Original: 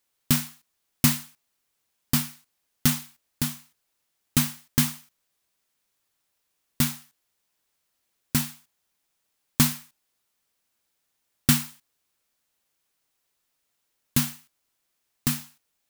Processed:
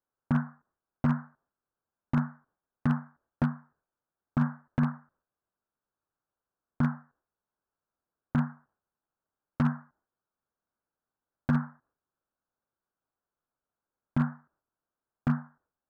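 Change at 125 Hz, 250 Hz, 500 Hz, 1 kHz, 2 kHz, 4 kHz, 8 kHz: -1.0 dB, -1.0 dB, 0.0 dB, +0.5 dB, -6.5 dB, under -25 dB, under -40 dB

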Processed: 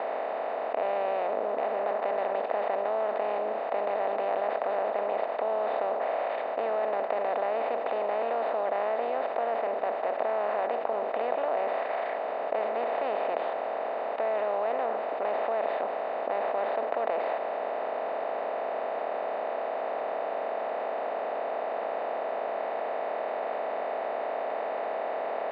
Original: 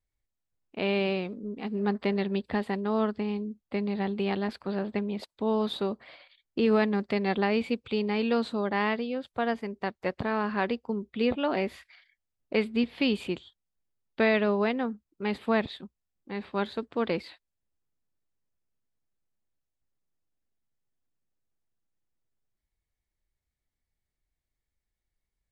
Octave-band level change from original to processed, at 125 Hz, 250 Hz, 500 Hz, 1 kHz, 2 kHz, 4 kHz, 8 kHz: under -20 dB, -16.5 dB, +3.5 dB, +7.5 dB, -2.5 dB, -9.5 dB, no reading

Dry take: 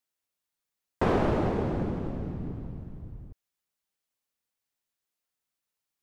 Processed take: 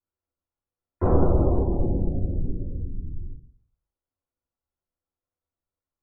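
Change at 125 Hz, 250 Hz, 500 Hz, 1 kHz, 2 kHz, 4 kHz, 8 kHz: +7.5 dB, +3.0 dB, +3.0 dB, -1.0 dB, under -10 dB, under -30 dB, no reading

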